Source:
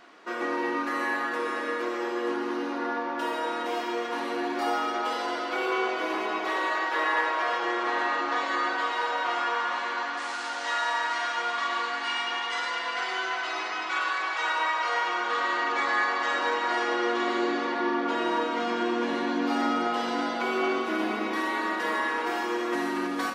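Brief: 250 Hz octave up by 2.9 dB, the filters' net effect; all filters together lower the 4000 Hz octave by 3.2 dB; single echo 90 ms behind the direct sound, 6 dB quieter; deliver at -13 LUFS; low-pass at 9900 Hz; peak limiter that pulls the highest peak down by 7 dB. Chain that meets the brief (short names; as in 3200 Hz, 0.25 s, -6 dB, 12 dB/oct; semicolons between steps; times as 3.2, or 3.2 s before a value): LPF 9900 Hz; bell 250 Hz +4 dB; bell 4000 Hz -4.5 dB; limiter -20.5 dBFS; echo 90 ms -6 dB; gain +15 dB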